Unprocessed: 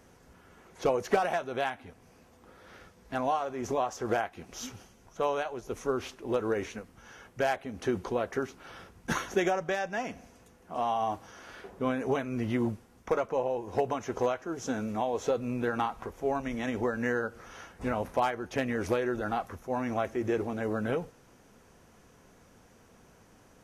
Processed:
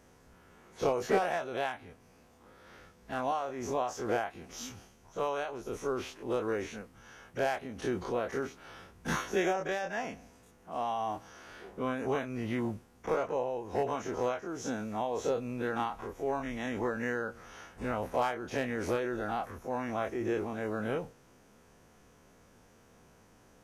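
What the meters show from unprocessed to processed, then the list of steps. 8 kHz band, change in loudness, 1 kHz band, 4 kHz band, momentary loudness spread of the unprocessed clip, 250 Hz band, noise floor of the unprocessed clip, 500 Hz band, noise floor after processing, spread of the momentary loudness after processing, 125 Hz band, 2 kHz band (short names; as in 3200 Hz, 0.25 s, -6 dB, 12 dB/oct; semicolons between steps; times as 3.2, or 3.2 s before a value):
-1.0 dB, -2.5 dB, -2.5 dB, -1.5 dB, 12 LU, -3.0 dB, -59 dBFS, -2.5 dB, -61 dBFS, 11 LU, -3.0 dB, -2.0 dB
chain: spectral dilation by 60 ms; gain -6 dB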